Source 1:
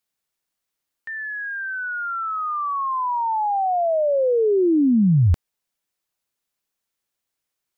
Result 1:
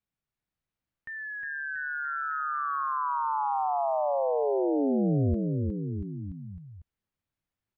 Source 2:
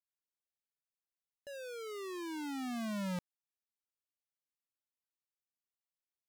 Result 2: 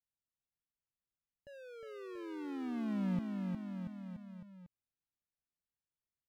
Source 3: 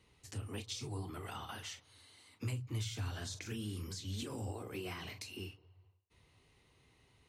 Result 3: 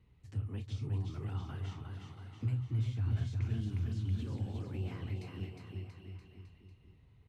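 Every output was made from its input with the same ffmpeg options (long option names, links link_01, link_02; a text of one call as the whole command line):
ffmpeg -i in.wav -af "bass=frequency=250:gain=14,treble=frequency=4000:gain=-13,acompressor=threshold=-20dB:ratio=6,aecho=1:1:360|684|975.6|1238|1474:0.631|0.398|0.251|0.158|0.1,volume=-7dB" out.wav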